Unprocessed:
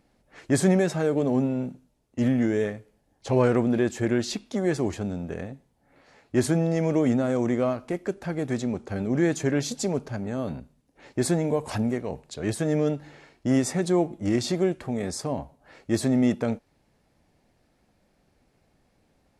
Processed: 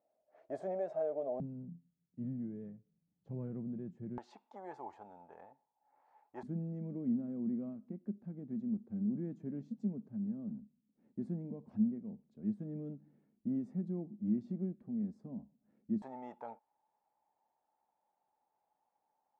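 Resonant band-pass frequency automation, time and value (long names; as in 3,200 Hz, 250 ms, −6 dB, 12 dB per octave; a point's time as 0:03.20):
resonant band-pass, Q 10
640 Hz
from 0:01.40 170 Hz
from 0:04.18 870 Hz
from 0:06.43 210 Hz
from 0:16.02 870 Hz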